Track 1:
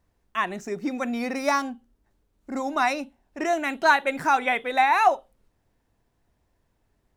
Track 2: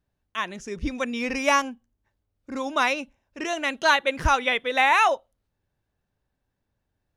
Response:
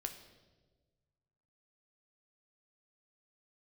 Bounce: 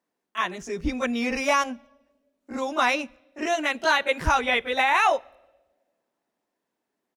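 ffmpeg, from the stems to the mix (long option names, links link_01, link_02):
-filter_complex "[0:a]highpass=frequency=220:width=0.5412,highpass=frequency=220:width=1.3066,volume=-6dB[link_01];[1:a]agate=range=-33dB:threshold=-45dB:ratio=3:detection=peak,adelay=19,volume=-0.5dB,asplit=2[link_02][link_03];[link_03]volume=-16.5dB[link_04];[2:a]atrim=start_sample=2205[link_05];[link_04][link_05]afir=irnorm=-1:irlink=0[link_06];[link_01][link_02][link_06]amix=inputs=3:normalize=0,alimiter=limit=-11dB:level=0:latency=1:release=25"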